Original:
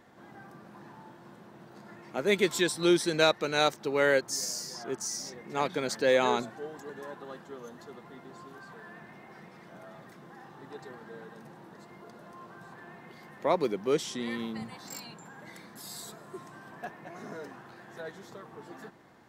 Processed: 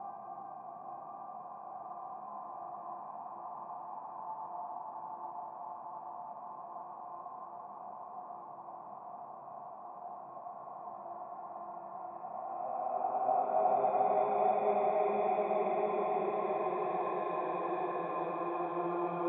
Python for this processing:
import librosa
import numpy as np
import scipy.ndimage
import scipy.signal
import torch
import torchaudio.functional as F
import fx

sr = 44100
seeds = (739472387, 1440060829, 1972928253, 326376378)

p1 = fx.paulstretch(x, sr, seeds[0], factor=8.1, window_s=0.5, from_s=0.46)
p2 = fx.rider(p1, sr, range_db=4, speed_s=0.5)
p3 = p1 + F.gain(torch.from_numpy(p2), -2.5).numpy()
p4 = fx.formant_cascade(p3, sr, vowel='a')
p5 = fx.hum_notches(p4, sr, base_hz=60, count=2)
p6 = fx.echo_wet_bandpass(p5, sr, ms=831, feedback_pct=69, hz=990.0, wet_db=-4.5)
y = F.gain(torch.from_numpy(p6), 9.0).numpy()